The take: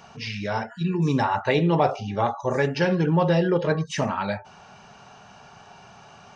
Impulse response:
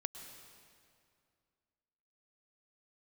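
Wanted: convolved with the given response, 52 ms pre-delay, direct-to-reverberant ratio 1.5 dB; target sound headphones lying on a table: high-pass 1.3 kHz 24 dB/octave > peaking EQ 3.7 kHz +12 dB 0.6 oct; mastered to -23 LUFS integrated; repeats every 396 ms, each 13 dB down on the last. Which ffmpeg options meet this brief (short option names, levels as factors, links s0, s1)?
-filter_complex "[0:a]aecho=1:1:396|792|1188:0.224|0.0493|0.0108,asplit=2[s0][s1];[1:a]atrim=start_sample=2205,adelay=52[s2];[s1][s2]afir=irnorm=-1:irlink=0,volume=1[s3];[s0][s3]amix=inputs=2:normalize=0,highpass=f=1300:w=0.5412,highpass=f=1300:w=1.3066,equalizer=f=3700:t=o:w=0.6:g=12,volume=1.68"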